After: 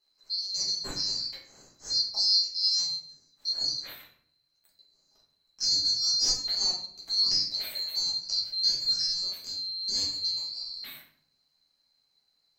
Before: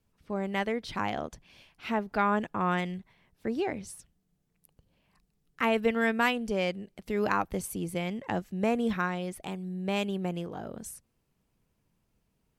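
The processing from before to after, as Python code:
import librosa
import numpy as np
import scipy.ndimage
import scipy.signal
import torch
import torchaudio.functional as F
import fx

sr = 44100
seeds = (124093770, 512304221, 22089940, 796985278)

y = fx.band_swap(x, sr, width_hz=4000)
y = fx.high_shelf(y, sr, hz=4200.0, db=-8.5)
y = fx.room_shoebox(y, sr, seeds[0], volume_m3=81.0, walls='mixed', distance_m=1.4)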